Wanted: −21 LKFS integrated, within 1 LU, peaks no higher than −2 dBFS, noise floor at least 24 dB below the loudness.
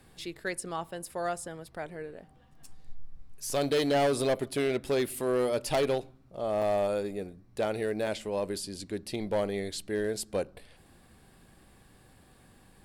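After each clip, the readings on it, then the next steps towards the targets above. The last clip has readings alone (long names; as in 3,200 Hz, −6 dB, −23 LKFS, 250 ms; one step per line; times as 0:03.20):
share of clipped samples 1.5%; peaks flattened at −22.0 dBFS; number of dropouts 3; longest dropout 1.5 ms; integrated loudness −31.5 LKFS; sample peak −22.0 dBFS; target loudness −21.0 LKFS
→ clipped peaks rebuilt −22 dBFS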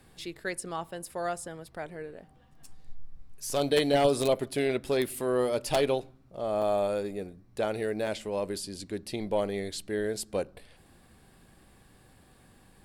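share of clipped samples 0.0%; number of dropouts 3; longest dropout 1.5 ms
→ repair the gap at 0:03.50/0:06.62/0:08.07, 1.5 ms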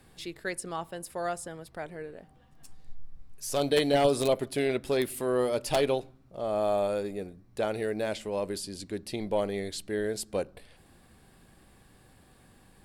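number of dropouts 0; integrated loudness −30.5 LKFS; sample peak −13.0 dBFS; target loudness −21.0 LKFS
→ level +9.5 dB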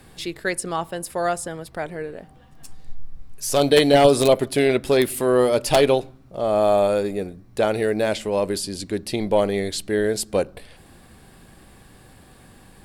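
integrated loudness −21.0 LKFS; sample peak −3.5 dBFS; background noise floor −50 dBFS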